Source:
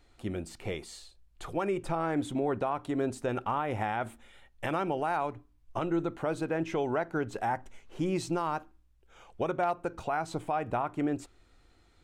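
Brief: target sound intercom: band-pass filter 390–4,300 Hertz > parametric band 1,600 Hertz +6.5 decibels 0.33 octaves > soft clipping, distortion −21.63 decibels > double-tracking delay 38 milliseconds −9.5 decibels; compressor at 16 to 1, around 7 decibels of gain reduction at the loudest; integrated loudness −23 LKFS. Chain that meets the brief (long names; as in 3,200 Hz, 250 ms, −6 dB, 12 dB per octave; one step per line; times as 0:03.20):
downward compressor 16 to 1, threshold −32 dBFS
band-pass filter 390–4,300 Hz
parametric band 1,600 Hz +6.5 dB 0.33 octaves
soft clipping −25.5 dBFS
double-tracking delay 38 ms −9.5 dB
level +17.5 dB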